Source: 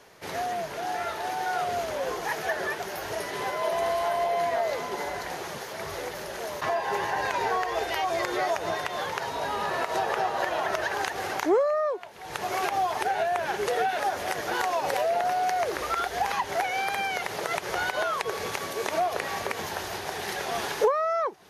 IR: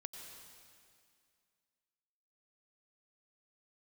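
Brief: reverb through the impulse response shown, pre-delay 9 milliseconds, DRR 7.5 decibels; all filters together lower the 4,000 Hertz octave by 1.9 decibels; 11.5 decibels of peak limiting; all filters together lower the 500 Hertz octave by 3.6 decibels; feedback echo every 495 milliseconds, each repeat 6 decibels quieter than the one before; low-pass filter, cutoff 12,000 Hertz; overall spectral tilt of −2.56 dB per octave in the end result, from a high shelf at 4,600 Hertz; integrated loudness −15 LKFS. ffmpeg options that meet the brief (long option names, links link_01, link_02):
-filter_complex "[0:a]lowpass=12000,equalizer=frequency=500:width_type=o:gain=-5,equalizer=frequency=4000:width_type=o:gain=-4,highshelf=frequency=4600:gain=3,alimiter=level_in=2dB:limit=-24dB:level=0:latency=1,volume=-2dB,aecho=1:1:495|990|1485|1980|2475|2970:0.501|0.251|0.125|0.0626|0.0313|0.0157,asplit=2[link_01][link_02];[1:a]atrim=start_sample=2205,adelay=9[link_03];[link_02][link_03]afir=irnorm=-1:irlink=0,volume=-4dB[link_04];[link_01][link_04]amix=inputs=2:normalize=0,volume=17.5dB"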